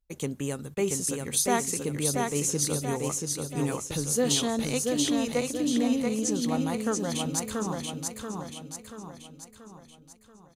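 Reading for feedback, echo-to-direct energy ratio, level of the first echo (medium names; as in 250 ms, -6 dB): 49%, -2.5 dB, -3.5 dB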